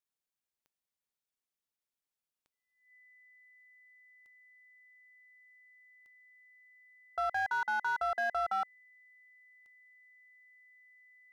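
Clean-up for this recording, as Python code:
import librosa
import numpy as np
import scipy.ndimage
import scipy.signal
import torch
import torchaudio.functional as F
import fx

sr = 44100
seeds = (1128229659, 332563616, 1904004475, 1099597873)

y = fx.fix_declip(x, sr, threshold_db=-27.0)
y = fx.fix_declick_ar(y, sr, threshold=10.0)
y = fx.notch(y, sr, hz=2000.0, q=30.0)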